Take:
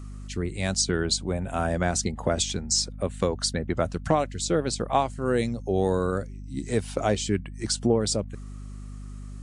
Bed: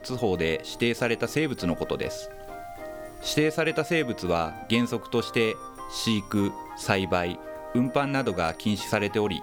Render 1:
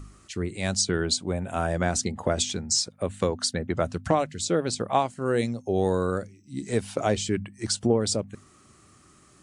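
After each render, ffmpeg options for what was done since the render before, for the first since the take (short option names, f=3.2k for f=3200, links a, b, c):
-af "bandreject=f=50:t=h:w=4,bandreject=f=100:t=h:w=4,bandreject=f=150:t=h:w=4,bandreject=f=200:t=h:w=4,bandreject=f=250:t=h:w=4"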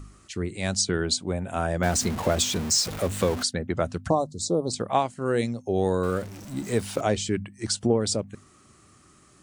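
-filter_complex "[0:a]asettb=1/sr,asplit=3[a][b][c];[a]atrim=end=1.834[d];[b]atrim=start=1.83:end=3.43,asetpts=PTS-STARTPTS,afade=t=in:d=0.004:c=qsin,afade=t=out:st=1.596:d=0.004:c=qsin,aeval=exprs='val(0)+0.5*0.0376*sgn(val(0))':c=same[e];[c]atrim=start=3.426[f];[d][e]acrossfade=d=0.004:c1=hsin:c2=qsin[g];[g][f]acrossfade=d=0.004:c1=qsin:c2=hsin,asplit=3[h][i][j];[h]afade=t=out:st=4.08:d=0.02[k];[i]asuperstop=centerf=2100:order=12:qfactor=0.76,afade=t=in:st=4.08:d=0.02,afade=t=out:st=4.72:d=0.02[l];[j]afade=t=in:st=4.72:d=0.02[m];[k][l][m]amix=inputs=3:normalize=0,asettb=1/sr,asplit=3[n][o][p];[n]atrim=end=6.034[q];[o]atrim=start=6.03:end=7.01,asetpts=PTS-STARTPTS,afade=t=in:d=0.004:c=qsin,afade=t=out:st=0.976:d=0.004:c=qsin,aeval=exprs='val(0)+0.5*0.0141*sgn(val(0))':c=same[r];[p]atrim=start=7.006[s];[q][r]acrossfade=d=0.004:c1=hsin:c2=qsin[t];[t][s]acrossfade=d=0.004:c1=qsin:c2=hsin"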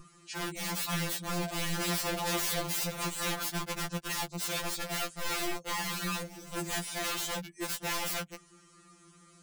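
-af "aeval=exprs='(mod(20*val(0)+1,2)-1)/20':c=same,afftfilt=real='re*2.83*eq(mod(b,8),0)':imag='im*2.83*eq(mod(b,8),0)':win_size=2048:overlap=0.75"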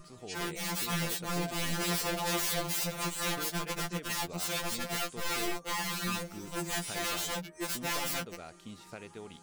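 -filter_complex "[1:a]volume=-21dB[a];[0:a][a]amix=inputs=2:normalize=0"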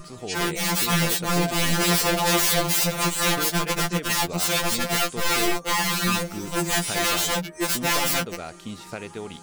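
-af "volume=11dB"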